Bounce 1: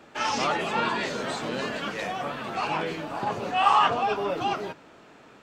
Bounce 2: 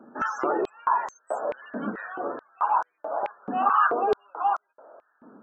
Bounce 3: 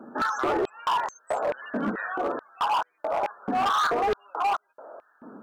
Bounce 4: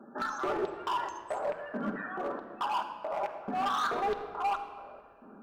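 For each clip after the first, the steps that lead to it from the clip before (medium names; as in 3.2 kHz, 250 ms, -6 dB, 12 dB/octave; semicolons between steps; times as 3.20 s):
high-order bell 3.2 kHz -14.5 dB; loudest bins only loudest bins 64; step-sequenced high-pass 4.6 Hz 230–6100 Hz; trim -2 dB
in parallel at -1 dB: compression 4:1, threshold -32 dBFS, peak gain reduction 13 dB; on the sum: overload inside the chain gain 21 dB
reverberation RT60 2.1 s, pre-delay 5 ms, DRR 5 dB; trim -8 dB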